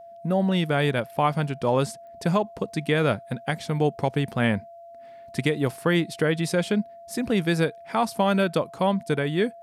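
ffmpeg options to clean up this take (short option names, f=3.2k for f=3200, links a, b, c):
-af "adeclick=t=4,bandreject=f=680:w=30"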